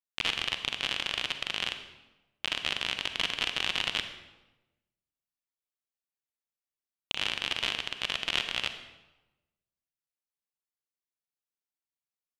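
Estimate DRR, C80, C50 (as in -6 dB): 8.0 dB, 11.0 dB, 9.0 dB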